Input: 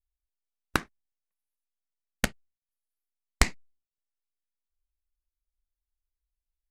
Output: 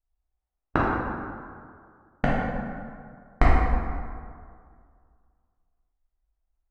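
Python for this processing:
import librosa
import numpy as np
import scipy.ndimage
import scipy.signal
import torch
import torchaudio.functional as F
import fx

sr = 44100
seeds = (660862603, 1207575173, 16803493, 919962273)

y = scipy.signal.sosfilt(scipy.signal.butter(2, 1300.0, 'lowpass', fs=sr, output='sos'), x)
y = fx.peak_eq(y, sr, hz=740.0, db=7.5, octaves=0.27)
y = fx.rev_plate(y, sr, seeds[0], rt60_s=2.1, hf_ratio=0.5, predelay_ms=0, drr_db=-7.0)
y = F.gain(torch.from_numpy(y), 1.5).numpy()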